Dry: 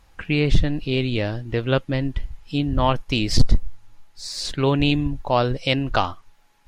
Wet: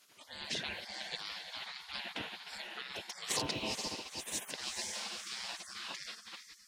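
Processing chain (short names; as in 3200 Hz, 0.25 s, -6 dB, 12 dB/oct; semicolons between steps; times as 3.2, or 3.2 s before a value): limiter -15 dBFS, peak gain reduction 10.5 dB; thirty-one-band EQ 160 Hz -9 dB, 250 Hz -8 dB, 1250 Hz -10 dB; on a send: diffused feedback echo 0.47 s, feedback 50%, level -9 dB; on the sum: spectral gate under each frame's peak -30 dB weak; gain +3.5 dB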